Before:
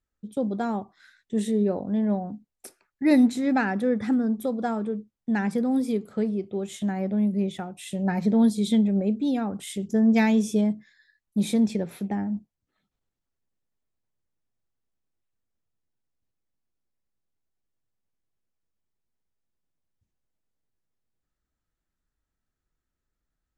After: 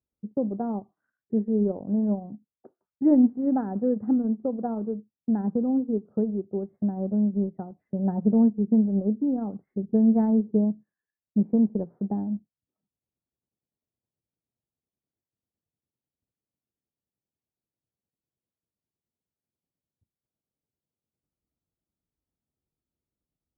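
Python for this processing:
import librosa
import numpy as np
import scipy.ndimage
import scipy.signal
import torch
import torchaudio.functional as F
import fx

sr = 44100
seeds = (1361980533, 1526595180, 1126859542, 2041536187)

y = scipy.signal.sosfilt(scipy.signal.butter(2, 86.0, 'highpass', fs=sr, output='sos'), x)
y = fx.transient(y, sr, attack_db=3, sustain_db=-7)
y = scipy.ndimage.gaussian_filter1d(y, 9.7, mode='constant')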